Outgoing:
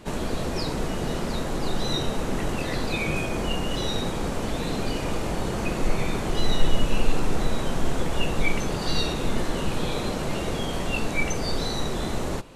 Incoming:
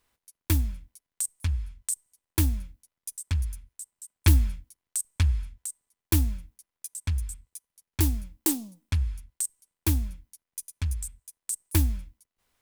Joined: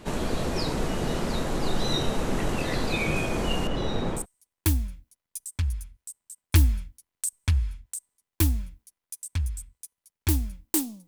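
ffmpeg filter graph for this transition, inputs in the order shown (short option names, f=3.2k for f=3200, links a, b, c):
-filter_complex "[0:a]asettb=1/sr,asplit=3[a][b][c];[a]atrim=end=3.674[d];[b]atrim=start=3.67:end=4.26,asetpts=PTS-STARTPTS,afade=t=in:d=0.004:c=qsin,afade=t=out:st=0.586:d=0.004:c=qsin,lowpass=f=1.7k:p=1[e];[c]atrim=start=4.256[f];[d][e]acrossfade=d=0.004:c1=hsin:c2=qsin[g];[g][f]acrossfade=d=0.004:c1=qsin:c2=hsin,apad=whole_dur=11.07,atrim=end=11.07,atrim=end=4.26,asetpts=PTS-STARTPTS[h];[1:a]atrim=start=1.86:end=8.79,asetpts=PTS-STARTPTS[i];[h][i]acrossfade=d=0.12:c1=tri:c2=tri"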